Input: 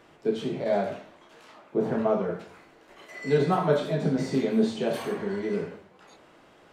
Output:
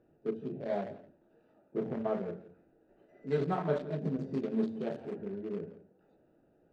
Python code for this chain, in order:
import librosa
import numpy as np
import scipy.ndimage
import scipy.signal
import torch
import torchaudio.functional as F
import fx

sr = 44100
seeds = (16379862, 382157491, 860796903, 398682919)

y = fx.wiener(x, sr, points=41)
y = fx.air_absorb(y, sr, metres=57.0)
y = y + 10.0 ** (-17.0 / 20.0) * np.pad(y, (int(169 * sr / 1000.0), 0))[:len(y)]
y = F.gain(torch.from_numpy(y), -7.5).numpy()